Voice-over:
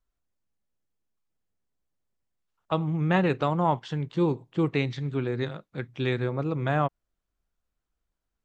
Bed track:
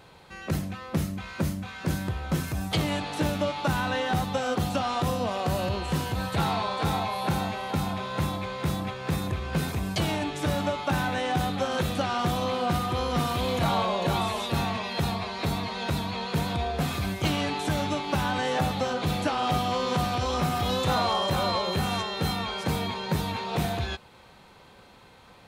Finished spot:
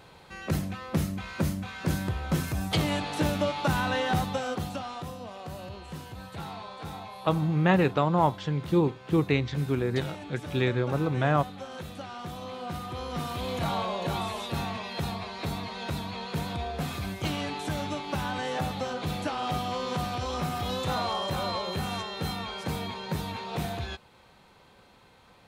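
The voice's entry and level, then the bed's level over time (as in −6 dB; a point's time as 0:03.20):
4.55 s, +1.0 dB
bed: 0:04.17 0 dB
0:05.14 −12.5 dB
0:12.22 −12.5 dB
0:13.61 −4.5 dB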